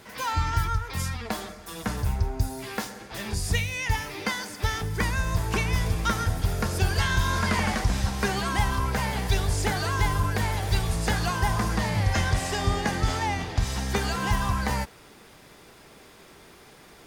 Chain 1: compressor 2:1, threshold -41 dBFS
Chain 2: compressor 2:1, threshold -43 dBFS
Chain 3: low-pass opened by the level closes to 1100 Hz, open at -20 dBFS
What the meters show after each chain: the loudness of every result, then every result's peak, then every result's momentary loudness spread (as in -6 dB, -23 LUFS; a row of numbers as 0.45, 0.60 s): -37.0, -38.0, -27.0 LUFS; -21.0, -22.0, -11.5 dBFS; 14, 13, 7 LU